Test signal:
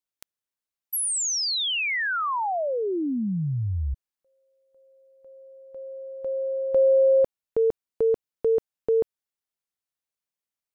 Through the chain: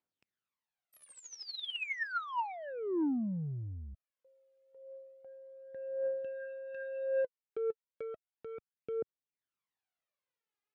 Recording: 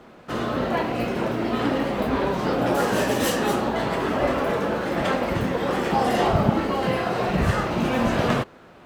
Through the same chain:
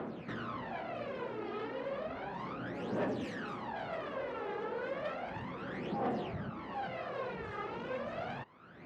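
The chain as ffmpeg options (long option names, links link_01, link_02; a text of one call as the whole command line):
ffmpeg -i in.wav -af "acompressor=threshold=-36dB:ratio=5:release=493:knee=6:detection=rms,asoftclip=type=tanh:threshold=-36.5dB,aphaser=in_gain=1:out_gain=1:delay=2.5:decay=0.68:speed=0.33:type=triangular,highpass=120,lowpass=3000" out.wav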